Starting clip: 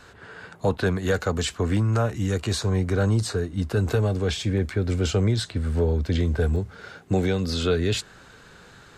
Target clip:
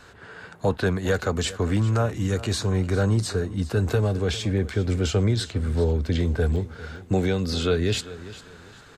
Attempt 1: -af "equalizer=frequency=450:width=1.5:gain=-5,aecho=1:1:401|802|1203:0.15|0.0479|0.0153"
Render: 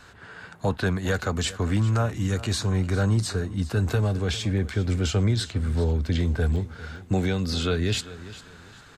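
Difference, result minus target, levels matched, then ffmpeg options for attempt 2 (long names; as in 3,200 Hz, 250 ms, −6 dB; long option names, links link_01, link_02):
500 Hz band −3.5 dB
-af "aecho=1:1:401|802|1203:0.15|0.0479|0.0153"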